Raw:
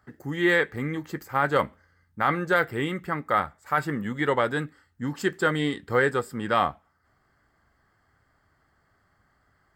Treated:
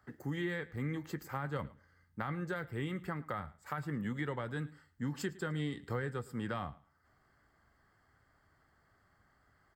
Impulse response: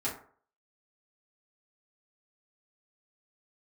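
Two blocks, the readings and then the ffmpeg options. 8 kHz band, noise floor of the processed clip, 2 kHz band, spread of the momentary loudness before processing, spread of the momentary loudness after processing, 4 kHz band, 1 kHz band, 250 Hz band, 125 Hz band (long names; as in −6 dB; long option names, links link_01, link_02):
−9.5 dB, −72 dBFS, −16.5 dB, 9 LU, 5 LU, −14.5 dB, −17.0 dB, −9.5 dB, −5.5 dB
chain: -filter_complex "[0:a]acrossover=split=180[link_01][link_02];[link_02]acompressor=threshold=-35dB:ratio=5[link_03];[link_01][link_03]amix=inputs=2:normalize=0,aecho=1:1:110|220:0.0944|0.0142,volume=-3.5dB"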